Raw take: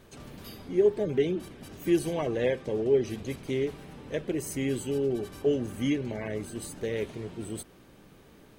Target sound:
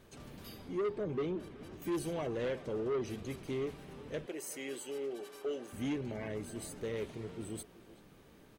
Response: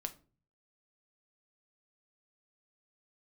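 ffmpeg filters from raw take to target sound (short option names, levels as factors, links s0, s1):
-filter_complex "[0:a]asettb=1/sr,asplit=3[s0][s1][s2];[s0]atrim=end=0.894[s3];[s1]atrim=start=0.89:end=1.82,asetpts=PTS-STARTPTS,afade=t=in:d=0.004:c=qsin,afade=t=out:st=0.926:d=0.004:c=qsin,highshelf=f=5000:g=-11[s4];[s2]atrim=start=1.816[s5];[s3][s4]acrossfade=d=0.004:c1=hsin:c2=qsin[s6];[s6][s5]acrossfade=d=0.004:c1=qsin:c2=hsin,asettb=1/sr,asplit=3[s7][s8][s9];[s7]atrim=end=4.264[s10];[s8]atrim=start=4.26:end=5.73,asetpts=PTS-STARTPTS,afade=t=in:d=0.004:c=qsin,afade=t=out:st=1.466:d=0.004:c=qsin,highpass=480[s11];[s9]atrim=start=5.726[s12];[s10][s11]acrossfade=d=0.004:c1=hsin:c2=qsin[s13];[s13][s12]acrossfade=d=0.004:c1=qsin:c2=hsin,asoftclip=type=tanh:threshold=0.0562,asplit=2[s14][s15];[s15]adelay=380,highpass=300,lowpass=3400,asoftclip=type=hard:threshold=0.0178,volume=0.251[s16];[s14][s16]amix=inputs=2:normalize=0,volume=0.562"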